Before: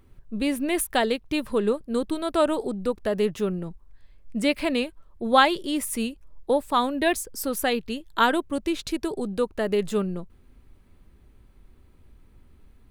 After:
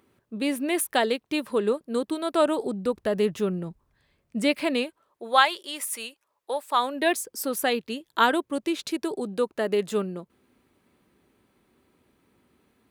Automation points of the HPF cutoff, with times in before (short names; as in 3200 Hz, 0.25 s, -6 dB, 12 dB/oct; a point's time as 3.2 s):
2.3 s 230 Hz
3.01 s 78 Hz
3.65 s 78 Hz
4.76 s 210 Hz
5.44 s 770 Hz
6.61 s 770 Hz
7.18 s 220 Hz